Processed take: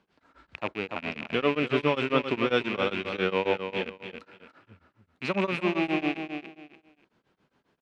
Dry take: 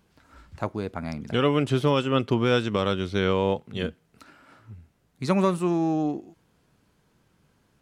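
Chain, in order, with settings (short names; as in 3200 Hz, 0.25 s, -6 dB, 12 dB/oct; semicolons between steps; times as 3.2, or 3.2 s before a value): rattling part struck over -36 dBFS, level -19 dBFS; Bessel low-pass 9200 Hz, order 2; three-band isolator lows -13 dB, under 210 Hz, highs -14 dB, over 4600 Hz; feedback echo 0.291 s, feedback 24%, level -7.5 dB; beating tremolo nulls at 7.4 Hz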